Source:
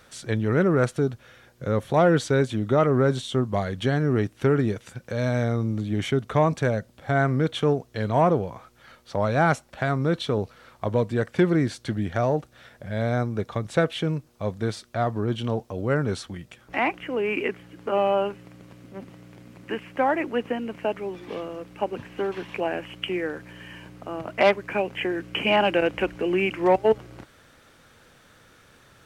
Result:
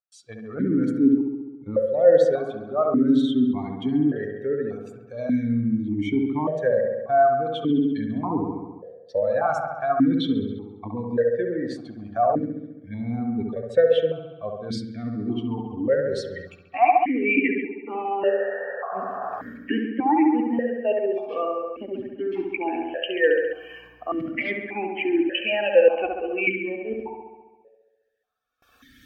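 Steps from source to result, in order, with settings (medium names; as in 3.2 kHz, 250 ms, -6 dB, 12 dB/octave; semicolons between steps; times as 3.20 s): expander on every frequency bin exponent 2; recorder AGC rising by 14 dB/s; gate with hold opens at -49 dBFS; reverse; compression 6:1, threshold -37 dBFS, peak gain reduction 19 dB; reverse; painted sound noise, 18.21–19.53 s, 400–1900 Hz -51 dBFS; on a send: feedback echo behind a low-pass 68 ms, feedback 68%, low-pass 1.7 kHz, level -3 dB; on the sum: FDN reverb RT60 0.34 s, high-frequency decay 0.85×, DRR 17 dB; loudness maximiser +26.5 dB; stepped vowel filter 1.7 Hz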